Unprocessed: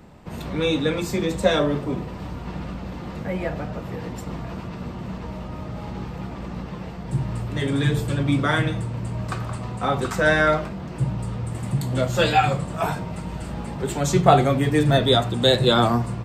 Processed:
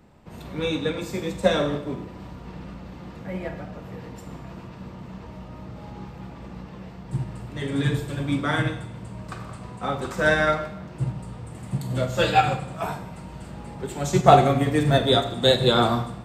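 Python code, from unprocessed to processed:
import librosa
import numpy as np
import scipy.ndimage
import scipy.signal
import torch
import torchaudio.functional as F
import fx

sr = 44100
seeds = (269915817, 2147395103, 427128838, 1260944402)

y = fx.rev_schroeder(x, sr, rt60_s=0.91, comb_ms=32, drr_db=6.5)
y = fx.upward_expand(y, sr, threshold_db=-27.0, expansion=1.5)
y = F.gain(torch.from_numpy(y), 1.0).numpy()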